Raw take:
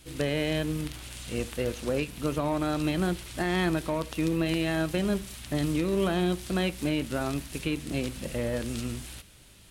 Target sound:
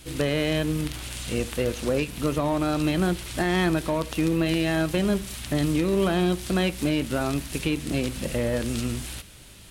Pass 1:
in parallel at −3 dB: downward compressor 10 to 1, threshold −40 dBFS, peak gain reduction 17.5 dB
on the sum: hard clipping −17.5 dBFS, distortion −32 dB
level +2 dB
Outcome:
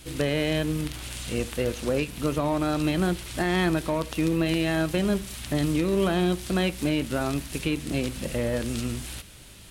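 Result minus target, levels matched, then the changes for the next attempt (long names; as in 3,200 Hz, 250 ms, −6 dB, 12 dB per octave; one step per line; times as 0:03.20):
downward compressor: peak gain reduction +7 dB
change: downward compressor 10 to 1, threshold −32 dBFS, peak gain reduction 10.5 dB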